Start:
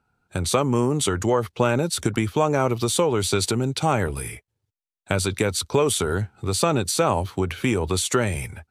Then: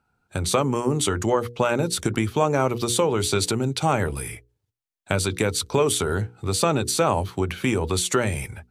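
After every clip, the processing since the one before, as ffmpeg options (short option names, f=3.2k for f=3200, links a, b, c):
-af "bandreject=f=60:t=h:w=6,bandreject=f=120:t=h:w=6,bandreject=f=180:t=h:w=6,bandreject=f=240:t=h:w=6,bandreject=f=300:t=h:w=6,bandreject=f=360:t=h:w=6,bandreject=f=420:t=h:w=6,bandreject=f=480:t=h:w=6"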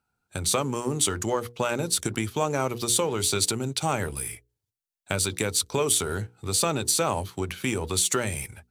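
-filter_complex "[0:a]asplit=2[a][b];[b]aeval=exprs='sgn(val(0))*max(abs(val(0))-0.0141,0)':c=same,volume=-5.5dB[c];[a][c]amix=inputs=2:normalize=0,highshelf=f=3.6k:g=10,volume=-9dB"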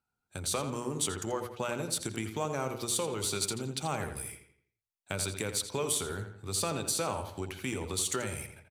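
-filter_complex "[0:a]asplit=2[a][b];[b]adelay=84,lowpass=f=4.2k:p=1,volume=-8dB,asplit=2[c][d];[d]adelay=84,lowpass=f=4.2k:p=1,volume=0.44,asplit=2[e][f];[f]adelay=84,lowpass=f=4.2k:p=1,volume=0.44,asplit=2[g][h];[h]adelay=84,lowpass=f=4.2k:p=1,volume=0.44,asplit=2[i][j];[j]adelay=84,lowpass=f=4.2k:p=1,volume=0.44[k];[a][c][e][g][i][k]amix=inputs=6:normalize=0,volume=-8dB"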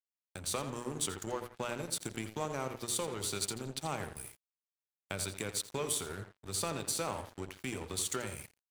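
-af "aeval=exprs='sgn(val(0))*max(abs(val(0))-0.00668,0)':c=same,volume=-2dB"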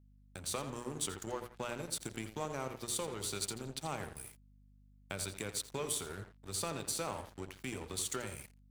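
-af "aeval=exprs='val(0)+0.00112*(sin(2*PI*50*n/s)+sin(2*PI*2*50*n/s)/2+sin(2*PI*3*50*n/s)/3+sin(2*PI*4*50*n/s)/4+sin(2*PI*5*50*n/s)/5)':c=same,volume=-2.5dB"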